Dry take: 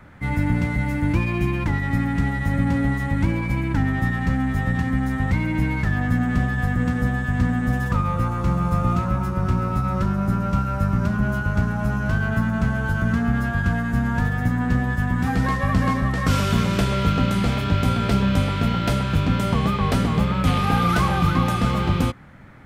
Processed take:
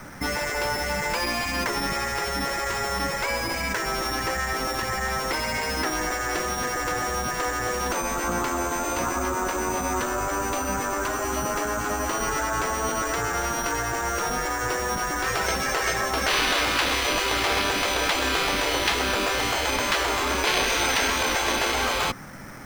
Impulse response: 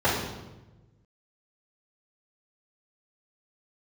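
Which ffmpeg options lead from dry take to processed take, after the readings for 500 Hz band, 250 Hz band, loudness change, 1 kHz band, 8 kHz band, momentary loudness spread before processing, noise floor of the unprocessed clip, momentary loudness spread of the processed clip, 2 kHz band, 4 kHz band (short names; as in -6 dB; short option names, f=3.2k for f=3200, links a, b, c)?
+2.5 dB, -11.0 dB, -2.5 dB, +1.5 dB, +14.0 dB, 3 LU, -26 dBFS, 5 LU, +2.5 dB, +8.0 dB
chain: -filter_complex "[0:a]acrusher=samples=6:mix=1:aa=0.000001,acrossover=split=6200[a][b];[b]acompressor=threshold=-45dB:ratio=4:attack=1:release=60[c];[a][c]amix=inputs=2:normalize=0,equalizer=f=75:w=0.6:g=-10.5,afftfilt=real='re*lt(hypot(re,im),0.141)':imag='im*lt(hypot(re,im),0.141)':win_size=1024:overlap=0.75,volume=8.5dB"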